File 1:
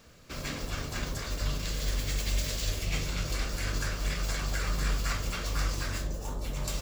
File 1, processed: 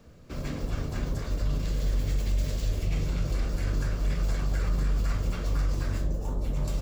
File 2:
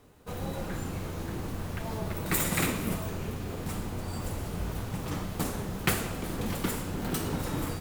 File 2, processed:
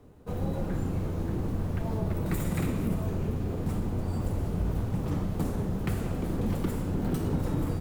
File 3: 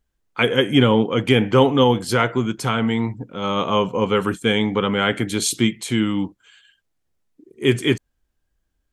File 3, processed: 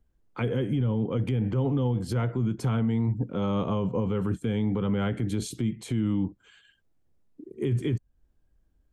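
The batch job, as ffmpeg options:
-filter_complex "[0:a]acrossover=split=150[s0][s1];[s1]acompressor=threshold=0.0251:ratio=2.5[s2];[s0][s2]amix=inputs=2:normalize=0,tiltshelf=f=910:g=7,alimiter=limit=0.126:level=0:latency=1:release=29,volume=0.891"

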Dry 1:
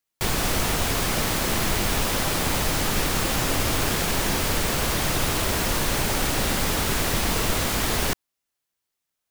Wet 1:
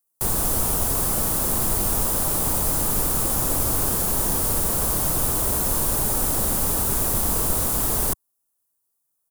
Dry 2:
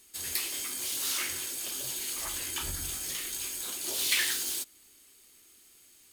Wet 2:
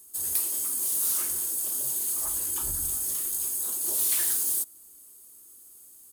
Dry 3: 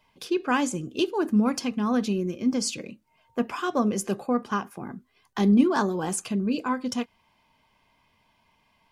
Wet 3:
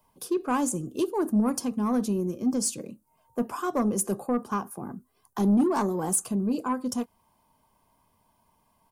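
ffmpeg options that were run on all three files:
-filter_complex "[0:a]firequalizer=gain_entry='entry(1100,0);entry(2100,-14);entry(9500,10)':delay=0.05:min_phase=1,acrossover=split=100[s0][s1];[s1]asoftclip=type=tanh:threshold=0.15[s2];[s0][s2]amix=inputs=2:normalize=0"

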